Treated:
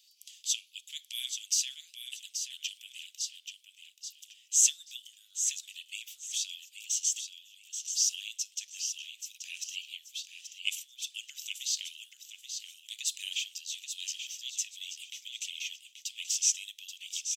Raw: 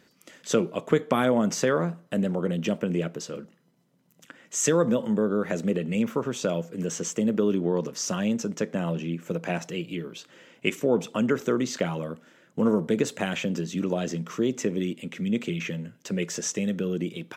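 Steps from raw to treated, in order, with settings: 7.19–7.65 s: level held to a coarse grid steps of 17 dB; steep high-pass 2.9 kHz 48 dB/octave; on a send: feedback delay 831 ms, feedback 25%, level -7.5 dB; on the sum: trim +4.5 dB

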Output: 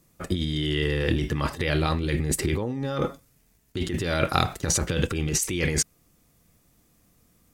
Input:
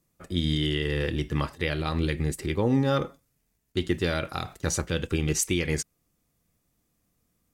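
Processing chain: compressor with a negative ratio -31 dBFS, ratio -1; trim +6 dB

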